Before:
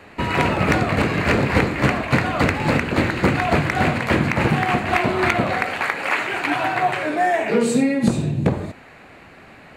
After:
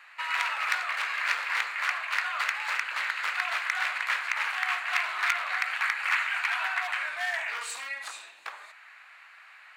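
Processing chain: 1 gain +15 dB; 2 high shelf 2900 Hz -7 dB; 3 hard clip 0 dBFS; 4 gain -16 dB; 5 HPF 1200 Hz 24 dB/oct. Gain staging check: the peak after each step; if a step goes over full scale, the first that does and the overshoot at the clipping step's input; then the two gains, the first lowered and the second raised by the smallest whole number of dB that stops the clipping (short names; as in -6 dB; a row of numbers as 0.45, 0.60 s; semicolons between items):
+9.0, +9.0, 0.0, -16.0, -10.5 dBFS; step 1, 9.0 dB; step 1 +6 dB, step 4 -7 dB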